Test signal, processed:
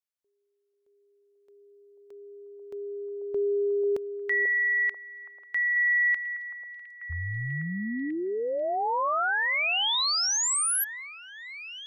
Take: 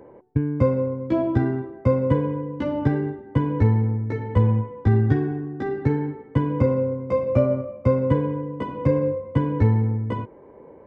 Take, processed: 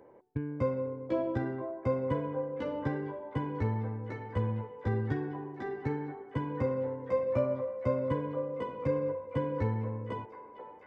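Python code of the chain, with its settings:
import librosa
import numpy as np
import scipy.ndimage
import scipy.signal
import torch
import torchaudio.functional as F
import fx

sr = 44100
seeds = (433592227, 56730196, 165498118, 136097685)

y = fx.low_shelf(x, sr, hz=380.0, db=-7.5)
y = fx.echo_stepped(y, sr, ms=490, hz=590.0, octaves=0.7, feedback_pct=70, wet_db=-5.0)
y = y * 10.0 ** (-7.0 / 20.0)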